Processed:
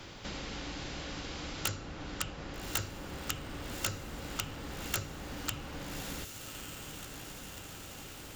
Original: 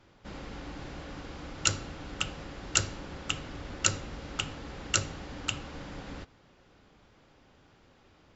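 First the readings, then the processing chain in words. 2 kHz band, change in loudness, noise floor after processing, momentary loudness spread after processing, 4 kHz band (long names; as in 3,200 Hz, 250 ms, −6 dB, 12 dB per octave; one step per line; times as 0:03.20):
−4.0 dB, −5.5 dB, −47 dBFS, 8 LU, −5.0 dB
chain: wrap-around overflow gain 16.5 dB
feedback delay with all-pass diffusion 1,201 ms, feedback 44%, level −15.5 dB
multiband upward and downward compressor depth 70%
level −1.5 dB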